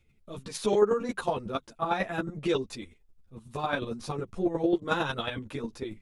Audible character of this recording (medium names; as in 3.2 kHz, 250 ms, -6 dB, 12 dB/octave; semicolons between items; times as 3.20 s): chopped level 11 Hz, depth 60%, duty 15%; a shimmering, thickened sound